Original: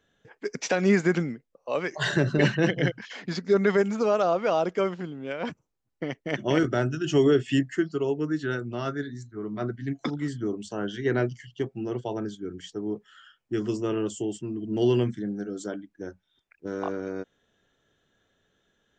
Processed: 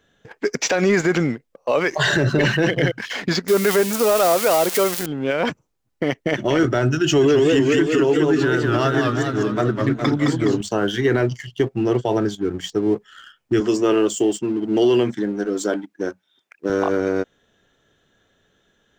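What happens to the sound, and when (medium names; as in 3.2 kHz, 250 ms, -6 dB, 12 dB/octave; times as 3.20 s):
3.48–5.06 s: zero-crossing glitches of -18 dBFS
6.97–10.61 s: modulated delay 207 ms, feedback 57%, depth 190 cents, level -4.5 dB
13.60–16.70 s: high-pass 220 Hz
whole clip: dynamic bell 190 Hz, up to -6 dB, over -40 dBFS, Q 1.6; waveshaping leveller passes 1; loudness maximiser +18 dB; trim -8.5 dB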